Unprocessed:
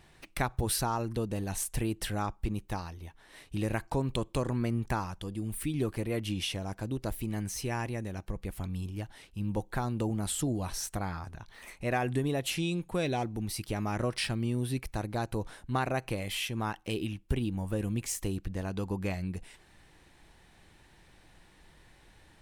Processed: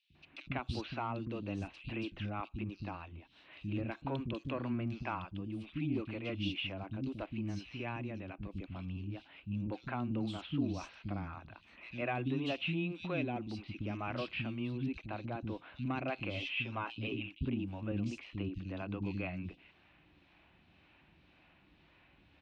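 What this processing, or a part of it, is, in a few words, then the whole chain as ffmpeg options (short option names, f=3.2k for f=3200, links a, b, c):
guitar amplifier with harmonic tremolo: -filter_complex "[0:a]asettb=1/sr,asplit=3[a][b][c];[a]atrim=end=16.194[d];[b]atrim=start=16.19:end=17.11,asetpts=PTS-STARTPTS,afade=t=in:d=0.004:c=qsin,afade=t=out:st=0.916:d=0.004:c=qsin,aecho=1:1:7.4:0.65,atrim=end_sample=40572[e];[c]atrim=start=17.106[f];[d][e]acrossfade=d=0.004:c1=hsin:c2=qsin[g];[g][f]acrossfade=d=0.004:c1=qsin:c2=hsin,acrossover=split=420[h][i];[h]aeval=exprs='val(0)*(1-0.5/2+0.5/2*cos(2*PI*1.9*n/s))':c=same[j];[i]aeval=exprs='val(0)*(1-0.5/2-0.5/2*cos(2*PI*1.9*n/s))':c=same[k];[j][k]amix=inputs=2:normalize=0,asoftclip=type=tanh:threshold=-21.5dB,highpass=79,equalizer=f=120:t=q:w=4:g=-5,equalizer=f=280:t=q:w=4:g=6,equalizer=f=450:t=q:w=4:g=-8,equalizer=f=860:t=q:w=4:g=-5,equalizer=f=1.8k:t=q:w=4:g=-7,equalizer=f=2.6k:t=q:w=4:g=8,lowpass=f=3.6k:w=0.5412,lowpass=f=3.6k:w=1.3066,acrossover=split=270|3300[l][m][n];[l]adelay=100[o];[m]adelay=150[p];[o][p][n]amix=inputs=3:normalize=0"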